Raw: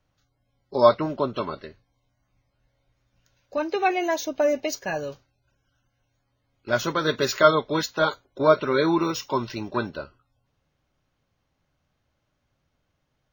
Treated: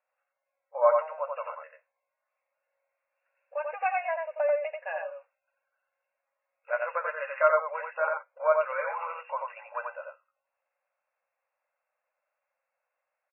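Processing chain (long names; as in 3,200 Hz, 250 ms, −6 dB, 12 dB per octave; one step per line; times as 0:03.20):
linear-phase brick-wall band-pass 480–2,800 Hz
single-tap delay 89 ms −3.5 dB
level −6 dB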